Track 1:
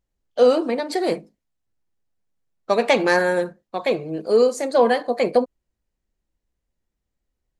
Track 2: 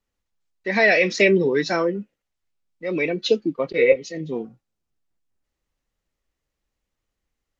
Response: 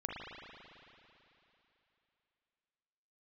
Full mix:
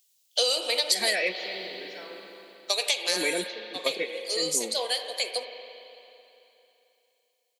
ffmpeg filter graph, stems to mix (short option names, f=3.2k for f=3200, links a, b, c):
-filter_complex "[0:a]highpass=f=460:w=0.5412,highpass=f=460:w=1.3066,highshelf=f=2.2k:t=q:w=1.5:g=13,crystalizer=i=3.5:c=0,volume=-5.5dB,afade=t=out:st=2.18:d=0.75:silence=0.251189,asplit=3[a][b][c];[b]volume=-4.5dB[d];[1:a]highpass=f=180:w=0.5412,highpass=f=180:w=1.3066,lowshelf=f=310:g=-11.5,adelay=250,volume=-0.5dB,asplit=2[e][f];[f]volume=-22dB[g];[c]apad=whole_len=346105[h];[e][h]sidechaingate=range=-33dB:threshold=-41dB:ratio=16:detection=peak[i];[2:a]atrim=start_sample=2205[j];[d][g]amix=inputs=2:normalize=0[k];[k][j]afir=irnorm=-1:irlink=0[l];[a][i][l]amix=inputs=3:normalize=0,acompressor=threshold=-22dB:ratio=6"